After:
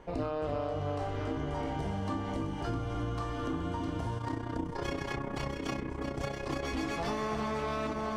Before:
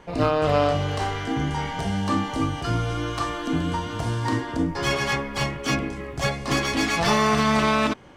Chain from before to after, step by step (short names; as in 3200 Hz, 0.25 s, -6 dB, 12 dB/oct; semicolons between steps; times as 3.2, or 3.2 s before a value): bell 160 Hz -7 dB 1.4 oct; echo with dull and thin repeats by turns 0.329 s, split 1400 Hz, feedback 65%, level -4 dB; 4.18–6.63 AM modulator 31 Hz, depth 50%; tilt shelf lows +5.5 dB, about 940 Hz; compressor, threshold -26 dBFS, peak gain reduction 12 dB; gain -5 dB